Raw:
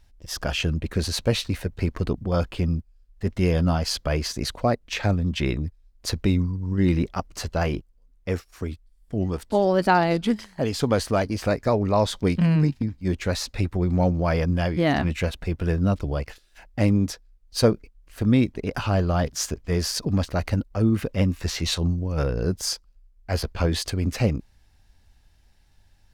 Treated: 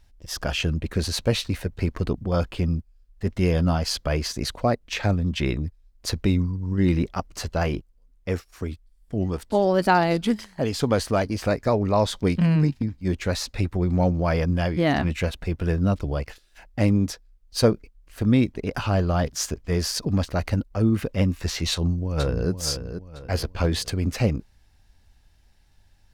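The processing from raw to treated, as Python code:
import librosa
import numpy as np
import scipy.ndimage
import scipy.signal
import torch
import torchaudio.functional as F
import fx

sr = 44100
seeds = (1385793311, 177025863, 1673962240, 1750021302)

y = fx.high_shelf(x, sr, hz=7100.0, db=5.0, at=(9.74, 10.45))
y = fx.echo_throw(y, sr, start_s=21.71, length_s=0.79, ms=480, feedback_pct=40, wet_db=-9.0)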